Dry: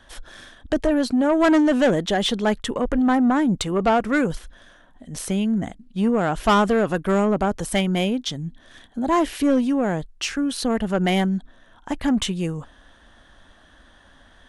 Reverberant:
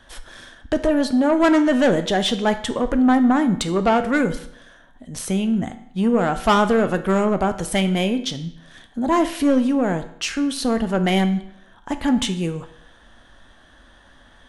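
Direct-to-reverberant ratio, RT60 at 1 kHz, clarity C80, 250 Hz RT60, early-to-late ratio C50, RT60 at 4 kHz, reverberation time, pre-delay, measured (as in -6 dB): 8.5 dB, 0.70 s, 15.5 dB, 0.70 s, 12.5 dB, 0.65 s, 0.70 s, 8 ms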